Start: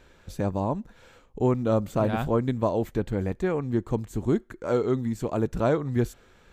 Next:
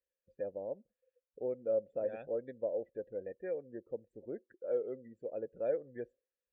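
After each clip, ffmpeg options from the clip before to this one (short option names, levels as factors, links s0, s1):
-filter_complex "[0:a]afftdn=nr=28:nf=-38,asplit=3[s0][s1][s2];[s0]bandpass=f=530:t=q:w=8,volume=1[s3];[s1]bandpass=f=1840:t=q:w=8,volume=0.501[s4];[s2]bandpass=f=2480:t=q:w=8,volume=0.355[s5];[s3][s4][s5]amix=inputs=3:normalize=0,volume=0.708"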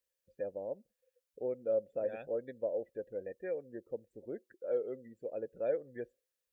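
-af "highshelf=f=2300:g=8"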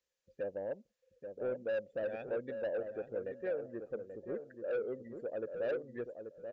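-filter_complex "[0:a]aresample=16000,asoftclip=type=tanh:threshold=0.0211,aresample=44100,asplit=2[s0][s1];[s1]adelay=833,lowpass=f=1000:p=1,volume=0.473,asplit=2[s2][s3];[s3]adelay=833,lowpass=f=1000:p=1,volume=0.25,asplit=2[s4][s5];[s5]adelay=833,lowpass=f=1000:p=1,volume=0.25[s6];[s0][s2][s4][s6]amix=inputs=4:normalize=0,volume=1.33"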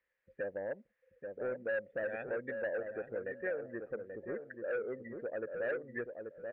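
-af "acompressor=threshold=0.00794:ratio=1.5,lowpass=f=1900:t=q:w=4.1,volume=1.19"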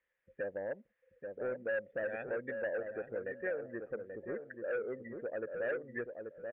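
-af "aresample=8000,aresample=44100"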